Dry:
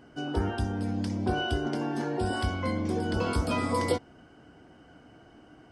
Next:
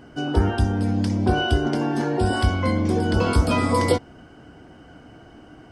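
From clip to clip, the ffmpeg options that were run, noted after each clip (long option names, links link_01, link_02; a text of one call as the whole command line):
ffmpeg -i in.wav -af "lowshelf=frequency=110:gain=5,volume=7dB" out.wav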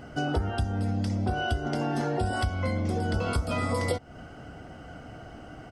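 ffmpeg -i in.wav -af "aecho=1:1:1.5:0.4,acompressor=threshold=-27dB:ratio=6,volume=2dB" out.wav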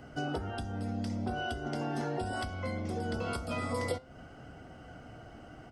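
ffmpeg -i in.wav -filter_complex "[0:a]acrossover=split=160|3300[link_01][link_02][link_03];[link_01]asoftclip=type=tanh:threshold=-32dB[link_04];[link_04][link_02][link_03]amix=inputs=3:normalize=0,flanger=delay=7.5:depth=1.1:regen=89:speed=0.46:shape=sinusoidal,volume=-1dB" out.wav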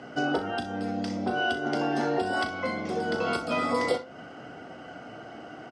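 ffmpeg -i in.wav -af "highpass=230,lowpass=6000,aecho=1:1:37|62:0.316|0.188,volume=8.5dB" out.wav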